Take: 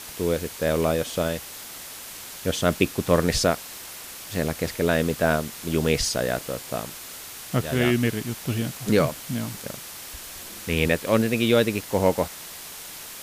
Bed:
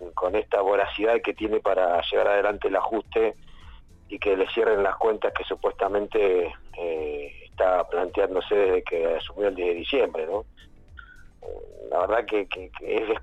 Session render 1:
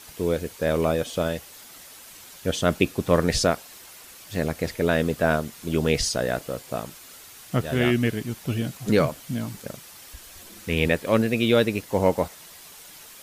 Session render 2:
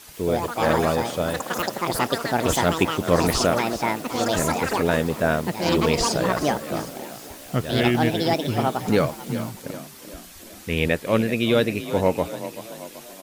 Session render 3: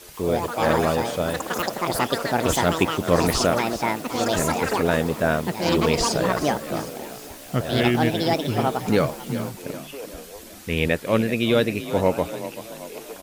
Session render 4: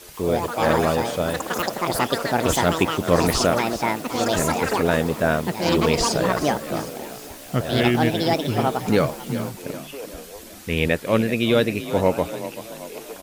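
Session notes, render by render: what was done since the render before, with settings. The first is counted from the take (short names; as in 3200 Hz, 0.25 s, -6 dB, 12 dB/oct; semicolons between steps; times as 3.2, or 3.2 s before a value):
denoiser 8 dB, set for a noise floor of -39 dBFS
frequency-shifting echo 0.383 s, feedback 53%, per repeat +31 Hz, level -13 dB; echoes that change speed 0.136 s, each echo +6 st, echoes 3
add bed -14.5 dB
gain +1 dB; limiter -3 dBFS, peak gain reduction 1 dB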